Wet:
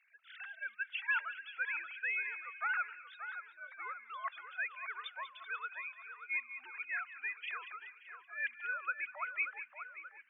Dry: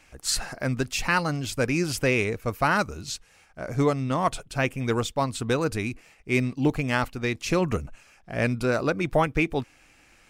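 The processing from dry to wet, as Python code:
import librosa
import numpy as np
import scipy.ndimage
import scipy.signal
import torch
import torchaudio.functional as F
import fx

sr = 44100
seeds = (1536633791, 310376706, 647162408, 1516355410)

y = fx.sine_speech(x, sr)
y = fx.ladder_highpass(y, sr, hz=1300.0, resonance_pct=40)
y = fx.echo_split(y, sr, split_hz=2000.0, low_ms=581, high_ms=191, feedback_pct=52, wet_db=-9)
y = y * librosa.db_to_amplitude(-2.5)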